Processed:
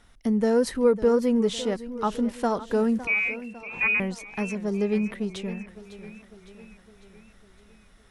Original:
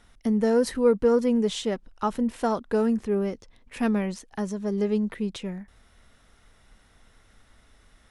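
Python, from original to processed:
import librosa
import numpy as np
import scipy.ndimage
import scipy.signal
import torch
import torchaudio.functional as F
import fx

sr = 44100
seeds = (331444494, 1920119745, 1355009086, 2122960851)

y = fx.freq_invert(x, sr, carrier_hz=2700, at=(3.07, 4.0))
y = fx.echo_warbled(y, sr, ms=555, feedback_pct=56, rate_hz=2.8, cents=130, wet_db=-15)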